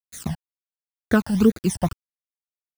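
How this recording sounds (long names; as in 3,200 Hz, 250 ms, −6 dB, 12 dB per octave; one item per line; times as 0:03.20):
a quantiser's noise floor 6 bits, dither none
phaser sweep stages 12, 2.1 Hz, lowest notch 380–1,000 Hz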